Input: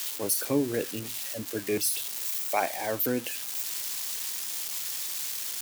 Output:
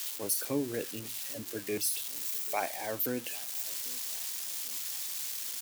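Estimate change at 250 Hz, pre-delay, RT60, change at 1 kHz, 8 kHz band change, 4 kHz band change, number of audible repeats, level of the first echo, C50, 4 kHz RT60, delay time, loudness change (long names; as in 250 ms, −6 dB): −6.0 dB, no reverb audible, no reverb audible, −5.5 dB, −3.5 dB, −4.0 dB, 2, −22.5 dB, no reverb audible, no reverb audible, 792 ms, −4.0 dB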